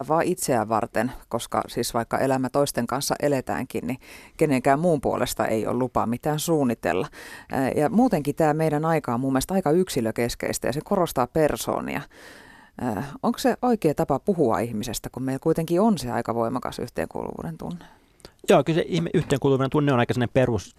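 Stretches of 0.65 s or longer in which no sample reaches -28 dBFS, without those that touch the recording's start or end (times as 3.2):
12.01–12.79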